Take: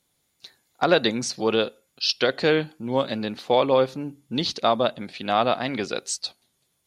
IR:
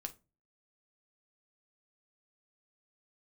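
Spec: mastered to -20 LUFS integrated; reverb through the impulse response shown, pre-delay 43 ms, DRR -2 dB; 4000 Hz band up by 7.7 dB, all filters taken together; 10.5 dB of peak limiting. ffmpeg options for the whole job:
-filter_complex "[0:a]equalizer=f=4k:t=o:g=9,alimiter=limit=-11dB:level=0:latency=1,asplit=2[a][b];[1:a]atrim=start_sample=2205,adelay=43[c];[b][c]afir=irnorm=-1:irlink=0,volume=4.5dB[d];[a][d]amix=inputs=2:normalize=0,volume=0.5dB"

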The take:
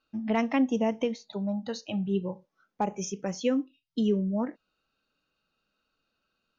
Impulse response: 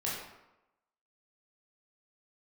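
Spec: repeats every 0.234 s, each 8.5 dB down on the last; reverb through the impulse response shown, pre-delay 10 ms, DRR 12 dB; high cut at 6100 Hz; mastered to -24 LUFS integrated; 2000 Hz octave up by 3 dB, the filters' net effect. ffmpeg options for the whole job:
-filter_complex "[0:a]lowpass=6.1k,equalizer=f=2k:t=o:g=3.5,aecho=1:1:234|468|702|936:0.376|0.143|0.0543|0.0206,asplit=2[a][b];[1:a]atrim=start_sample=2205,adelay=10[c];[b][c]afir=irnorm=-1:irlink=0,volume=-17dB[d];[a][d]amix=inputs=2:normalize=0,volume=5dB"

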